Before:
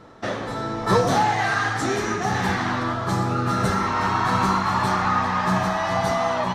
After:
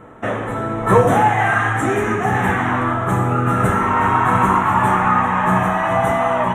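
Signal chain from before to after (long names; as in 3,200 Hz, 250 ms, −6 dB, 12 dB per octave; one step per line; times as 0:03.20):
Butterworth band-reject 4,700 Hz, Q 0.95
convolution reverb, pre-delay 3 ms, DRR 7.5 dB
level +5 dB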